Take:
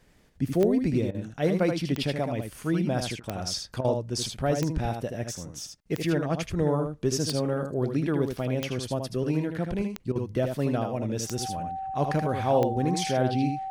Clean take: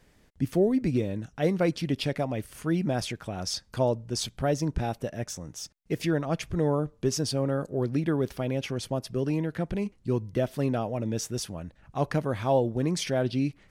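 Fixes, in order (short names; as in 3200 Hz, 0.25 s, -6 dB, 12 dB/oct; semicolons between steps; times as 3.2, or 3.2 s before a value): de-click; notch 770 Hz, Q 30; interpolate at 1.11/3.2/3.81/10.12, 34 ms; inverse comb 78 ms -6 dB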